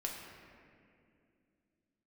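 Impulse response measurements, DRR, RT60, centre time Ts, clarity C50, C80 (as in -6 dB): -1.5 dB, 2.4 s, 84 ms, 2.5 dB, 3.5 dB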